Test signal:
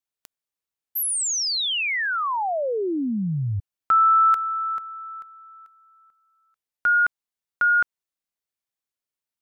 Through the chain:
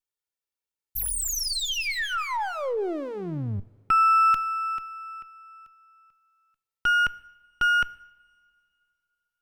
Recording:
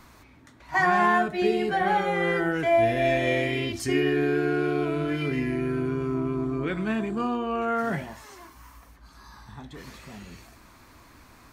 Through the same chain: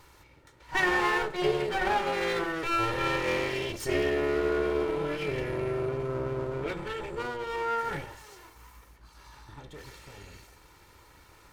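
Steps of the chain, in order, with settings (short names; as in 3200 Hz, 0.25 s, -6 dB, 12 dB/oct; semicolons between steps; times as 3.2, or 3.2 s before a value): minimum comb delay 2.2 ms; two-slope reverb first 0.8 s, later 3 s, from -18 dB, DRR 17 dB; gain -2 dB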